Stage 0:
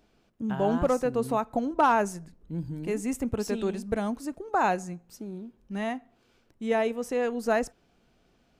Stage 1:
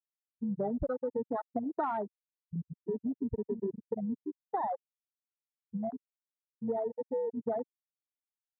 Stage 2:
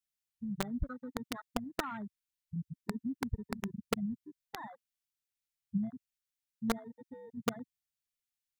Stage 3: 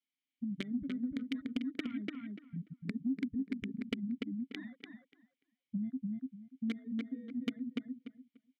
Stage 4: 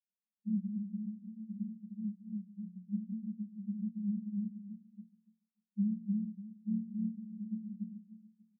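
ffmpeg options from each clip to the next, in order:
ffmpeg -i in.wav -af "afftfilt=real='re*gte(hypot(re,im),0.251)':imag='im*gte(hypot(re,im),0.251)':win_size=1024:overlap=0.75,afwtdn=0.0282,acompressor=threshold=-30dB:ratio=6" out.wav
ffmpeg -i in.wav -filter_complex "[0:a]equalizer=frequency=810:width=1.3:gain=-11,acrossover=split=220|960[link_01][link_02][link_03];[link_01]aphaser=in_gain=1:out_gain=1:delay=4.4:decay=0.41:speed=0.52:type=triangular[link_04];[link_02]acrusher=bits=4:mix=0:aa=0.000001[link_05];[link_04][link_05][link_03]amix=inputs=3:normalize=0,volume=4.5dB" out.wav
ffmpeg -i in.wav -filter_complex "[0:a]asplit=3[link_01][link_02][link_03];[link_01]bandpass=frequency=270:width_type=q:width=8,volume=0dB[link_04];[link_02]bandpass=frequency=2290:width_type=q:width=8,volume=-6dB[link_05];[link_03]bandpass=frequency=3010:width_type=q:width=8,volume=-9dB[link_06];[link_04][link_05][link_06]amix=inputs=3:normalize=0,asplit=2[link_07][link_08];[link_08]adelay=292,lowpass=frequency=3400:poles=1,volume=-4dB,asplit=2[link_09][link_10];[link_10]adelay=292,lowpass=frequency=3400:poles=1,volume=0.17,asplit=2[link_11][link_12];[link_12]adelay=292,lowpass=frequency=3400:poles=1,volume=0.17[link_13];[link_09][link_11][link_13]amix=inputs=3:normalize=0[link_14];[link_07][link_14]amix=inputs=2:normalize=0,acompressor=threshold=-50dB:ratio=2.5,volume=14.5dB" out.wav
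ffmpeg -i in.wav -af "tremolo=f=39:d=0.788,asuperpass=centerf=200:order=20:qfactor=4.5,aecho=1:1:138:0.141,volume=9.5dB" out.wav

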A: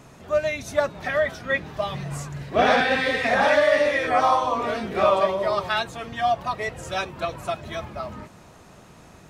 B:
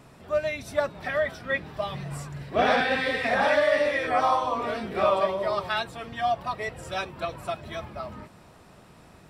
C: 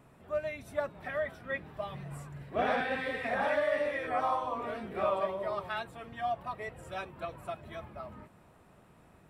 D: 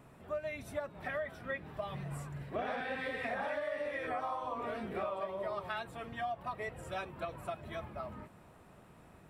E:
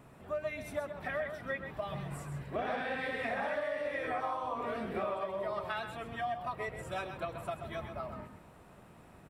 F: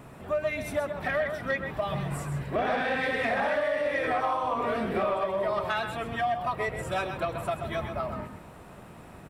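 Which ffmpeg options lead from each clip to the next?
ffmpeg -i in.wav -af "bandreject=frequency=6500:width=5.8,volume=-3.5dB" out.wav
ffmpeg -i in.wav -af "equalizer=frequency=5000:width_type=o:width=1.1:gain=-10,volume=-7.5dB" out.wav
ffmpeg -i in.wav -af "acompressor=threshold=-36dB:ratio=6,volume=1.5dB" out.wav
ffmpeg -i in.wav -af "aecho=1:1:130:0.376,volume=1.5dB" out.wav
ffmpeg -i in.wav -af "asoftclip=type=tanh:threshold=-27dB,volume=9dB" out.wav

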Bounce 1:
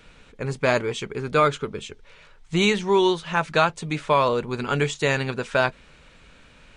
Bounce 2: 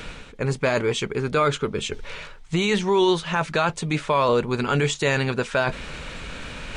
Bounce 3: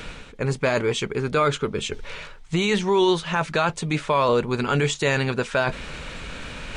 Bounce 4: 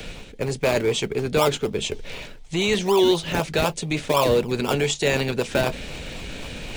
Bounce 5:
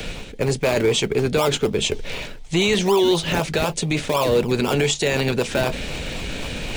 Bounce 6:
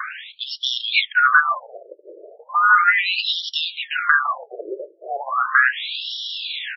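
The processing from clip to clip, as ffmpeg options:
ffmpeg -i in.wav -af "alimiter=limit=-15.5dB:level=0:latency=1:release=12,areverse,acompressor=mode=upward:threshold=-26dB:ratio=2.5,areverse,volume=4dB" out.wav
ffmpeg -i in.wav -af anull out.wav
ffmpeg -i in.wav -filter_complex "[0:a]acrossover=split=290|800|1800[link_01][link_02][link_03][link_04];[link_01]asoftclip=type=tanh:threshold=-30.5dB[link_05];[link_03]acrusher=samples=29:mix=1:aa=0.000001:lfo=1:lforange=17.4:lforate=4[link_06];[link_05][link_02][link_06][link_04]amix=inputs=4:normalize=0,volume=2.5dB" out.wav
ffmpeg -i in.wav -af "alimiter=level_in=14.5dB:limit=-1dB:release=50:level=0:latency=1,volume=-9dB" out.wav
ffmpeg -i in.wav -filter_complex "[0:a]afftfilt=real='real(if(lt(b,960),b+48*(1-2*mod(floor(b/48),2)),b),0)':imag='imag(if(lt(b,960),b+48*(1-2*mod(floor(b/48),2)),b),0)':win_size=2048:overlap=0.75,asplit=2[link_01][link_02];[link_02]adelay=1050,volume=-14dB,highshelf=frequency=4000:gain=-23.6[link_03];[link_01][link_03]amix=inputs=2:normalize=0,afftfilt=real='re*between(b*sr/1024,430*pow(4100/430,0.5+0.5*sin(2*PI*0.36*pts/sr))/1.41,430*pow(4100/430,0.5+0.5*sin(2*PI*0.36*pts/sr))*1.41)':imag='im*between(b*sr/1024,430*pow(4100/430,0.5+0.5*sin(2*PI*0.36*pts/sr))/1.41,430*pow(4100/430,0.5+0.5*sin(2*PI*0.36*pts/sr))*1.41)':win_size=1024:overlap=0.75,volume=7dB" out.wav

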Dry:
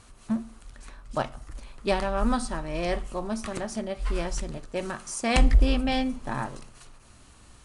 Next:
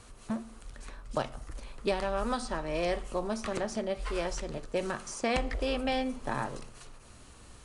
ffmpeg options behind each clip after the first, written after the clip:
ffmpeg -i in.wav -filter_complex "[0:a]equalizer=frequency=470:width_type=o:width=0.51:gain=5,acrossover=split=350|2500|7300[link_01][link_02][link_03][link_04];[link_01]acompressor=threshold=-36dB:ratio=4[link_05];[link_02]acompressor=threshold=-29dB:ratio=4[link_06];[link_03]acompressor=threshold=-40dB:ratio=4[link_07];[link_04]acompressor=threshold=-57dB:ratio=4[link_08];[link_05][link_06][link_07][link_08]amix=inputs=4:normalize=0" out.wav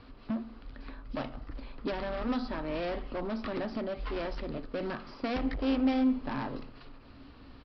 ffmpeg -i in.wav -af "highshelf=frequency=4200:gain=-5.5,aresample=11025,asoftclip=type=hard:threshold=-31.5dB,aresample=44100,equalizer=frequency=270:width=5.6:gain=14" out.wav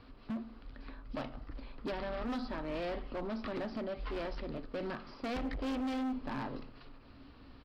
ffmpeg -i in.wav -af "asoftclip=type=hard:threshold=-29.5dB,volume=-3.5dB" out.wav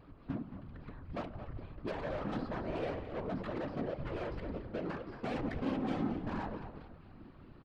ffmpeg -i in.wav -filter_complex "[0:a]asplit=5[link_01][link_02][link_03][link_04][link_05];[link_02]adelay=220,afreqshift=-44,volume=-9dB[link_06];[link_03]adelay=440,afreqshift=-88,volume=-18.1dB[link_07];[link_04]adelay=660,afreqshift=-132,volume=-27.2dB[link_08];[link_05]adelay=880,afreqshift=-176,volume=-36.4dB[link_09];[link_01][link_06][link_07][link_08][link_09]amix=inputs=5:normalize=0,adynamicsmooth=sensitivity=5.5:basefreq=2400,afftfilt=real='hypot(re,im)*cos(2*PI*random(0))':imag='hypot(re,im)*sin(2*PI*random(1))':win_size=512:overlap=0.75,volume=6dB" out.wav

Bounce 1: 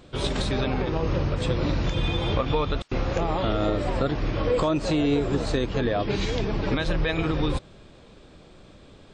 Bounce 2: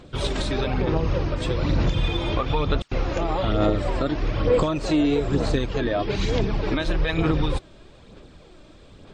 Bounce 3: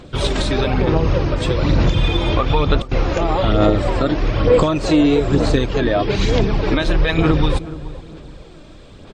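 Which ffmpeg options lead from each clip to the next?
ffmpeg -i in.wav -af "aphaser=in_gain=1:out_gain=1:delay=3.3:decay=0.41:speed=1.1:type=sinusoidal" out.wav
ffmpeg -i in.wav -filter_complex "[0:a]asplit=2[link_01][link_02];[link_02]adelay=425,lowpass=frequency=920:poles=1,volume=-14.5dB,asplit=2[link_03][link_04];[link_04]adelay=425,lowpass=frequency=920:poles=1,volume=0.36,asplit=2[link_05][link_06];[link_06]adelay=425,lowpass=frequency=920:poles=1,volume=0.36[link_07];[link_01][link_03][link_05][link_07]amix=inputs=4:normalize=0,volume=6.5dB" out.wav

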